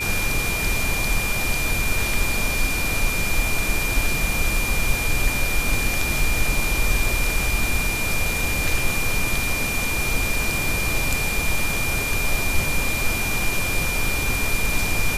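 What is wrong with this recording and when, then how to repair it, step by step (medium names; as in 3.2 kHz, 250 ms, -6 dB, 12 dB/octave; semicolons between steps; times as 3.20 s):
whine 2.4 kHz -25 dBFS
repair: band-stop 2.4 kHz, Q 30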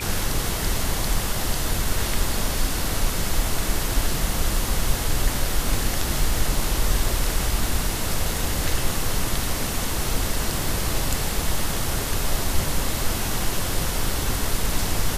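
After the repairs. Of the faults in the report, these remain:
nothing left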